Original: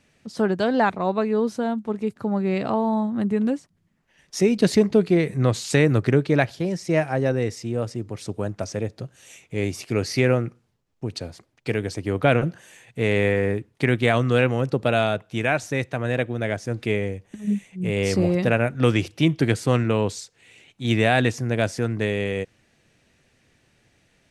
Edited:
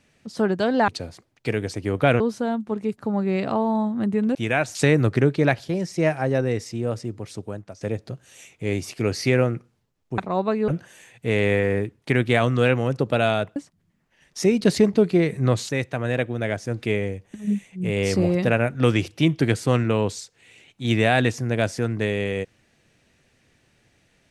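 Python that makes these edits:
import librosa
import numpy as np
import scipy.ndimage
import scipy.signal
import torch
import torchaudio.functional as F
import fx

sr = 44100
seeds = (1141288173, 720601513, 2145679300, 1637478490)

y = fx.edit(x, sr, fx.swap(start_s=0.88, length_s=0.5, other_s=11.09, other_length_s=1.32),
    fx.swap(start_s=3.53, length_s=2.13, other_s=15.29, other_length_s=0.4),
    fx.fade_out_to(start_s=7.74, length_s=0.98, curve='qsin', floor_db=-16.5), tone=tone)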